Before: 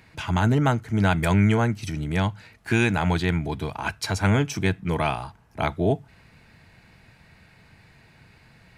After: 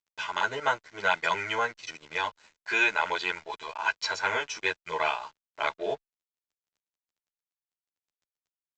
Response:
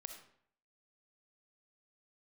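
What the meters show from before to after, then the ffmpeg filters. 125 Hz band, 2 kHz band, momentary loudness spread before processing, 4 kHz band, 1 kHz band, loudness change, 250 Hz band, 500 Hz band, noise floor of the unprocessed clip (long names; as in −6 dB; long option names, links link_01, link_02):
−30.5 dB, +1.5 dB, 9 LU, +0.5 dB, −1.0 dB, −5.0 dB, −22.0 dB, −6.0 dB, −55 dBFS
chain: -filter_complex "[0:a]highpass=720,lowpass=5800,aecho=1:1:2:0.53,aresample=16000,aeval=exprs='sgn(val(0))*max(abs(val(0))-0.00447,0)':channel_layout=same,aresample=44100,asplit=2[link_01][link_02];[link_02]adelay=11.3,afreqshift=-0.35[link_03];[link_01][link_03]amix=inputs=2:normalize=1,volume=3.5dB"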